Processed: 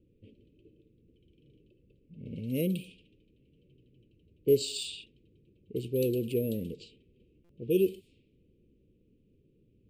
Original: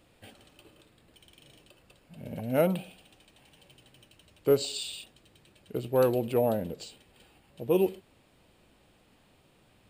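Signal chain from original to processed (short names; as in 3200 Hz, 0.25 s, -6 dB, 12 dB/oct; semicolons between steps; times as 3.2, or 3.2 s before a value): elliptic band-stop 440–2600 Hz, stop band 40 dB; low-pass opened by the level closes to 850 Hz, open at -30 dBFS; stuck buffer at 7.44, samples 256, times 8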